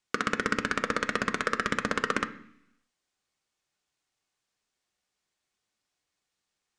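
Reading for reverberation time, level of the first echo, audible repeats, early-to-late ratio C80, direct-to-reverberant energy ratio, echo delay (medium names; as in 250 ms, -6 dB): 0.70 s, no echo, no echo, 18.0 dB, 6.5 dB, no echo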